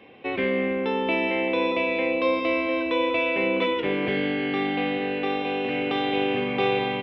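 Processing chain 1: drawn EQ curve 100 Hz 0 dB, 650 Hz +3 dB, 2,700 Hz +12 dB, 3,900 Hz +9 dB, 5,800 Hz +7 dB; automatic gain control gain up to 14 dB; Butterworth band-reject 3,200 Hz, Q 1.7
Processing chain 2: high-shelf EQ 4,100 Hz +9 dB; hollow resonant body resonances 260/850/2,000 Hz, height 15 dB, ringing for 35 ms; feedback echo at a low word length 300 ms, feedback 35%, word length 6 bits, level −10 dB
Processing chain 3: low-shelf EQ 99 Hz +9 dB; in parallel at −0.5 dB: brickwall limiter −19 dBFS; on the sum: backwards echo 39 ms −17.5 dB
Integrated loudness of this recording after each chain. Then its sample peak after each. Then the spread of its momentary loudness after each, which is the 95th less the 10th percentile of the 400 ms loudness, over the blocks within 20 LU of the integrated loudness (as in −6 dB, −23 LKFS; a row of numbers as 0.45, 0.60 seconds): −15.0, −16.0, −20.0 LKFS; −2.5, −4.0, −8.0 dBFS; 3, 2, 3 LU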